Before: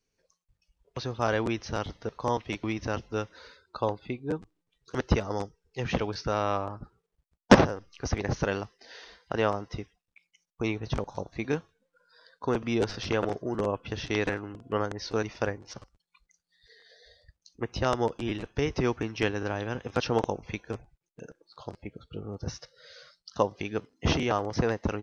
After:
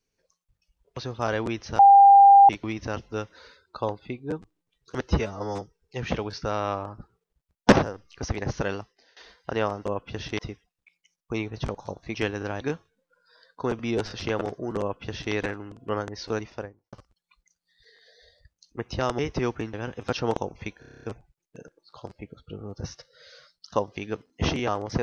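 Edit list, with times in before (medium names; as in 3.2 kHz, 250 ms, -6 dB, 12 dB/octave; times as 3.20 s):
1.79–2.49 s: bleep 797 Hz -9 dBFS
5.09–5.44 s: stretch 1.5×
8.56–8.99 s: fade out, to -22.5 dB
13.63–14.16 s: copy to 9.68 s
15.15–15.76 s: studio fade out
18.02–18.60 s: delete
19.15–19.61 s: move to 11.44 s
20.67 s: stutter 0.03 s, 9 plays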